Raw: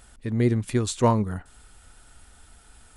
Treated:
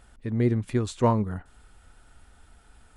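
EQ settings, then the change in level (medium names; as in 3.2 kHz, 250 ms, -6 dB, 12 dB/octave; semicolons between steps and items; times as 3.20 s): treble shelf 4 kHz -10.5 dB; -1.5 dB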